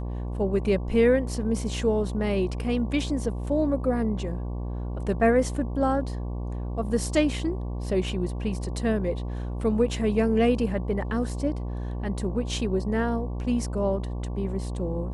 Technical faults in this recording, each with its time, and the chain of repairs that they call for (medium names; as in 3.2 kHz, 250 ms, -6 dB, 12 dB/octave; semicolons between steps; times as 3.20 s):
buzz 60 Hz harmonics 19 -31 dBFS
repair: de-hum 60 Hz, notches 19